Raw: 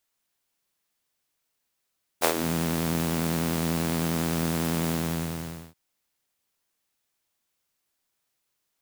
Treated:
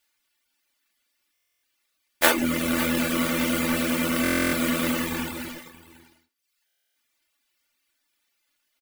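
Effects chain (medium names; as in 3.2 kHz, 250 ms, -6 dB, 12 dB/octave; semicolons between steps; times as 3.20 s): square wave that keeps the level; dynamic bell 4.9 kHz, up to -6 dB, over -49 dBFS, Q 1.8; delay 551 ms -13 dB; in parallel at -12 dB: bit crusher 5-bit; on the sum: comb 3.4 ms, depth 64%; on a send at -1 dB: Chebyshev high-pass 270 Hz, order 4 + reverberation, pre-delay 3 ms; on the sum: reverb removal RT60 0.83 s; FFT filter 960 Hz 0 dB, 2.2 kHz +9 dB, 6.5 kHz +5 dB, 15 kHz +7 dB; buffer glitch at 1.33/4.23/6.66 s, samples 1024, times 12; trim -6 dB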